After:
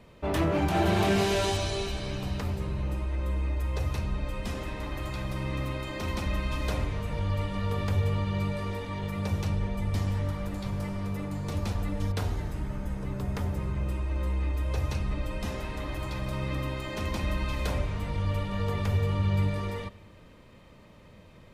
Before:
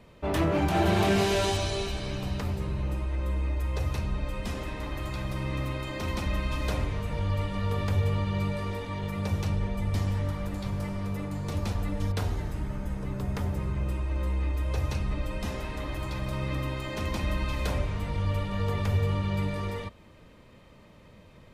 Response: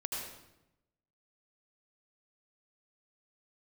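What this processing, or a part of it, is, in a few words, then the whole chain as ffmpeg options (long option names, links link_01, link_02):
compressed reverb return: -filter_complex "[0:a]asplit=2[link_01][link_02];[1:a]atrim=start_sample=2205[link_03];[link_02][link_03]afir=irnorm=-1:irlink=0,acompressor=threshold=-33dB:ratio=6,volume=-14.5dB[link_04];[link_01][link_04]amix=inputs=2:normalize=0,asettb=1/sr,asplit=3[link_05][link_06][link_07];[link_05]atrim=end=19.194[link_08];[link_06]atrim=start=19.19:end=19.59,asetpts=PTS-STARTPTS,afade=type=in:duration=0.004:curve=qsin,afade=type=out:start_time=0.396:duration=0.004:curve=qsin,equalizer=frequency=94:width_type=o:width=0.77:gain=5.5[link_09];[link_07]atrim=start=19.586[link_10];[link_08][link_09]acrossfade=duration=0.004:curve1=hsin:curve2=qsin[link_11];[link_11][link_10]acrossfade=duration=0.004:curve1=qsin:curve2=hsin,volume=-1dB"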